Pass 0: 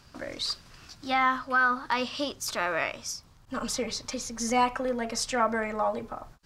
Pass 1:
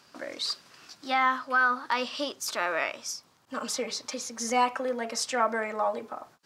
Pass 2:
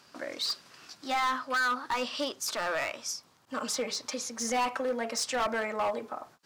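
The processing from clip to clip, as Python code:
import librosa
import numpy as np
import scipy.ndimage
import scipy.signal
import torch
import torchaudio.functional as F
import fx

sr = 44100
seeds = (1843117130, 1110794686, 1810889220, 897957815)

y1 = scipy.signal.sosfilt(scipy.signal.butter(2, 270.0, 'highpass', fs=sr, output='sos'), x)
y2 = np.clip(10.0 ** (25.0 / 20.0) * y1, -1.0, 1.0) / 10.0 ** (25.0 / 20.0)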